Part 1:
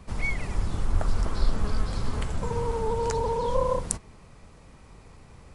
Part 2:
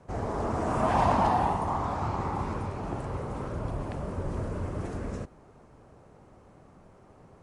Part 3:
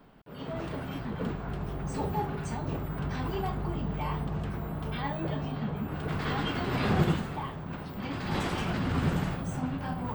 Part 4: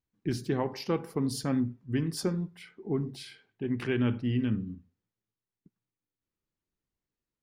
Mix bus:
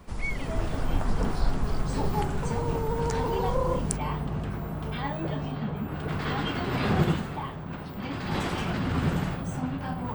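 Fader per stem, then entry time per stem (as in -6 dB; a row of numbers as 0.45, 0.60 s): -3.0, -18.0, +1.5, -16.5 dB; 0.00, 0.00, 0.00, 0.00 s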